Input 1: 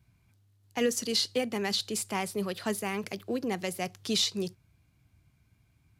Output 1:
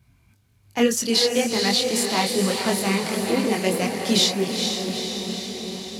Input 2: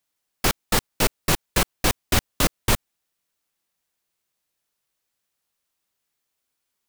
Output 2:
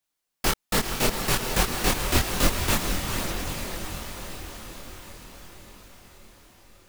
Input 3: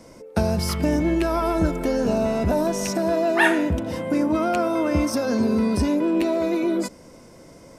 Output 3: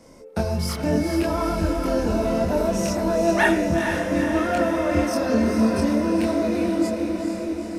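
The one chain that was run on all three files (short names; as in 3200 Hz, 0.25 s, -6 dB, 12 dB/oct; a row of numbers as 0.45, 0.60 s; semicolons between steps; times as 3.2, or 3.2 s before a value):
diffused feedback echo 0.451 s, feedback 67%, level -5 dB; chorus voices 4, 1.1 Hz, delay 24 ms, depth 3 ms; normalise peaks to -6 dBFS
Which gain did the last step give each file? +11.0, +0.5, +0.5 dB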